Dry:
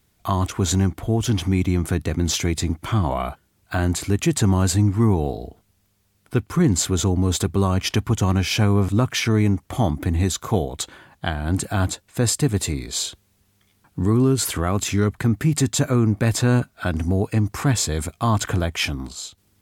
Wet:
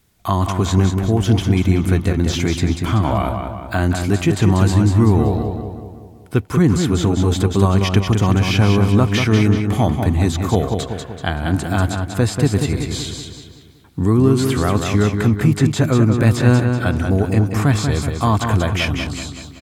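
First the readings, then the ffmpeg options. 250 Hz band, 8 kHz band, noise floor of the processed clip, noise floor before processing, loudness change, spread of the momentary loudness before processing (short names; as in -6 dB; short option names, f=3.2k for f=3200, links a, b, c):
+5.0 dB, -4.5 dB, -41 dBFS, -65 dBFS, +4.5 dB, 8 LU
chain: -filter_complex "[0:a]asplit=2[a][b];[b]adelay=189,lowpass=f=3.9k:p=1,volume=-5.5dB,asplit=2[c][d];[d]adelay=189,lowpass=f=3.9k:p=1,volume=0.53,asplit=2[e][f];[f]adelay=189,lowpass=f=3.9k:p=1,volume=0.53,asplit=2[g][h];[h]adelay=189,lowpass=f=3.9k:p=1,volume=0.53,asplit=2[i][j];[j]adelay=189,lowpass=f=3.9k:p=1,volume=0.53,asplit=2[k][l];[l]adelay=189,lowpass=f=3.9k:p=1,volume=0.53,asplit=2[m][n];[n]adelay=189,lowpass=f=3.9k:p=1,volume=0.53[o];[a][c][e][g][i][k][m][o]amix=inputs=8:normalize=0,acrossover=split=3800[p][q];[q]acompressor=threshold=-34dB:ratio=4:attack=1:release=60[r];[p][r]amix=inputs=2:normalize=0,volume=3.5dB"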